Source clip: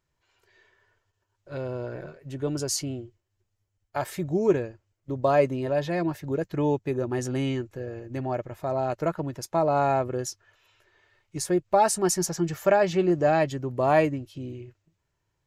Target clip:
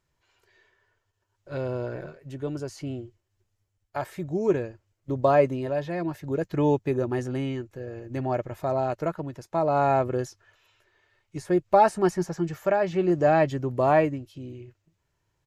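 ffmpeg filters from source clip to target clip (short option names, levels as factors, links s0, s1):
-filter_complex "[0:a]acrossover=split=2600[s0][s1];[s1]acompressor=threshold=0.00501:ratio=4:attack=1:release=60[s2];[s0][s2]amix=inputs=2:normalize=0,aresample=32000,aresample=44100,tremolo=f=0.59:d=0.46,volume=1.33"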